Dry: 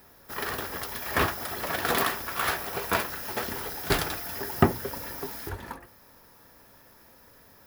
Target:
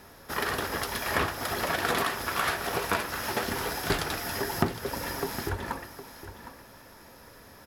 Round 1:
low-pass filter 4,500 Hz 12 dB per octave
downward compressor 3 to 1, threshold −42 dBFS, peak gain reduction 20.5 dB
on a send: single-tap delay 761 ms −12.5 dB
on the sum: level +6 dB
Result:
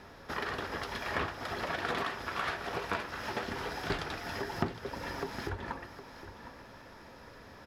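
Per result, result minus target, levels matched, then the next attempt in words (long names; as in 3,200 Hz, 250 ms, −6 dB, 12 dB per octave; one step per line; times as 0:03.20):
8,000 Hz band −9.0 dB; downward compressor: peak gain reduction +6.5 dB
low-pass filter 11,000 Hz 12 dB per octave
downward compressor 3 to 1, threshold −42 dBFS, peak gain reduction 20.5 dB
on a send: single-tap delay 761 ms −12.5 dB
on the sum: level +6 dB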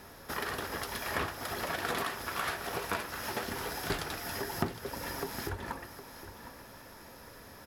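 downward compressor: peak gain reduction +6.5 dB
low-pass filter 11,000 Hz 12 dB per octave
downward compressor 3 to 1, threshold −32.5 dBFS, peak gain reduction 14.5 dB
on a send: single-tap delay 761 ms −12.5 dB
on the sum: level +6 dB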